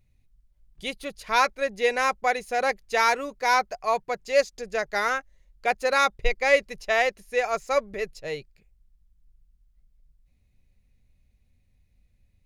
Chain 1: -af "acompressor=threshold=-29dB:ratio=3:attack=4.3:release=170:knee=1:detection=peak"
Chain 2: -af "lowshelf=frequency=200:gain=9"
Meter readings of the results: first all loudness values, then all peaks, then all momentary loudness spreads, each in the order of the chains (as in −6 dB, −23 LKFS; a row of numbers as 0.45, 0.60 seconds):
−33.5, −24.5 LKFS; −18.0, −3.0 dBFS; 6, 11 LU